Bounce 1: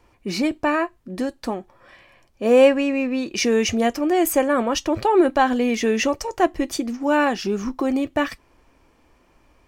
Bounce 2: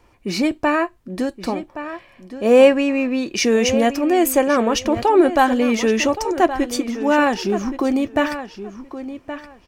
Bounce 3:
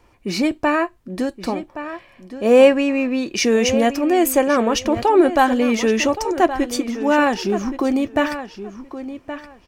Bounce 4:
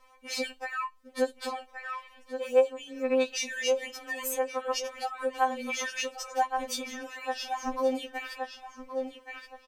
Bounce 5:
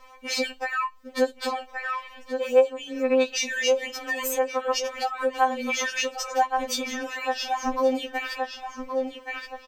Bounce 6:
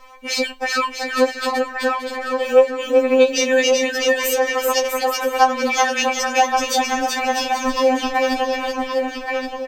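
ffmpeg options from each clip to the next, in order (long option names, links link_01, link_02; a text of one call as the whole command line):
ffmpeg -i in.wav -filter_complex "[0:a]asplit=2[link_01][link_02];[link_02]adelay=1121,lowpass=frequency=4100:poles=1,volume=-11.5dB,asplit=2[link_03][link_04];[link_04]adelay=1121,lowpass=frequency=4100:poles=1,volume=0.18[link_05];[link_01][link_03][link_05]amix=inputs=3:normalize=0,volume=2.5dB" out.wav
ffmpeg -i in.wav -af anull out.wav
ffmpeg -i in.wav -af "firequalizer=gain_entry='entry(170,0);entry(330,-17);entry(510,8)':delay=0.05:min_phase=1,acompressor=threshold=-18dB:ratio=5,afftfilt=real='re*3.46*eq(mod(b,12),0)':imag='im*3.46*eq(mod(b,12),0)':win_size=2048:overlap=0.75,volume=-8dB" out.wav
ffmpeg -i in.wav -filter_complex "[0:a]equalizer=frequency=10000:width=2.8:gain=-11.5,asplit=2[link_01][link_02];[link_02]acompressor=threshold=-39dB:ratio=6,volume=1.5dB[link_03];[link_01][link_03]amix=inputs=2:normalize=0,volume=3dB" out.wav
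ffmpeg -i in.wav -af "aecho=1:1:380|646|832.2|962.5|1054:0.631|0.398|0.251|0.158|0.1,volume=5.5dB" out.wav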